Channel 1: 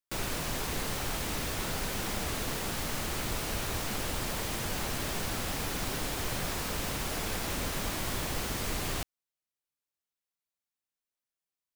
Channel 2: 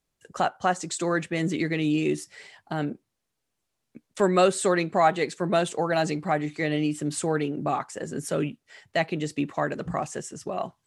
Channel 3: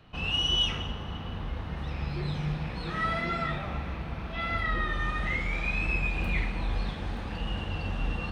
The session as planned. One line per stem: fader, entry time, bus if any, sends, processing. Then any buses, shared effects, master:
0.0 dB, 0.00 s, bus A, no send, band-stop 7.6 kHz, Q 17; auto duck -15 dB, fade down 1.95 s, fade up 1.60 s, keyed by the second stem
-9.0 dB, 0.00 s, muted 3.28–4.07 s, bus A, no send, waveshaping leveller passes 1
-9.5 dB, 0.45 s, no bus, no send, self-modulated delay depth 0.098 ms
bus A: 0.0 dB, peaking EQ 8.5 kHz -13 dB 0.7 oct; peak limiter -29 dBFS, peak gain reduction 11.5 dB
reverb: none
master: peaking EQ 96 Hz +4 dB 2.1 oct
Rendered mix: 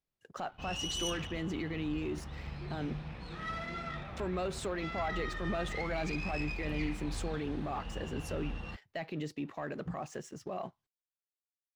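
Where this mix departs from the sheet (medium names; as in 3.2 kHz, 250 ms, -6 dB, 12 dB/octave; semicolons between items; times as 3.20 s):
stem 1: muted; master: missing peaking EQ 96 Hz +4 dB 2.1 oct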